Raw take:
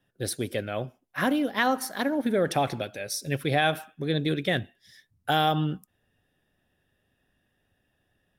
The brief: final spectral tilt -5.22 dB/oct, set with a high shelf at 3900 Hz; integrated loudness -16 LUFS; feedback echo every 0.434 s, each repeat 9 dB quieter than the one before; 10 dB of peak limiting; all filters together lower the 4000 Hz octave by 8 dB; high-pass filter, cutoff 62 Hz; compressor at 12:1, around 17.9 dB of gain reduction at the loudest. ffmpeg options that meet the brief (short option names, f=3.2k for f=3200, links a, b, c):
-af "highpass=62,highshelf=f=3.9k:g=-5,equalizer=f=4k:t=o:g=-7.5,acompressor=threshold=-38dB:ratio=12,alimiter=level_in=8.5dB:limit=-24dB:level=0:latency=1,volume=-8.5dB,aecho=1:1:434|868|1302|1736:0.355|0.124|0.0435|0.0152,volume=28.5dB"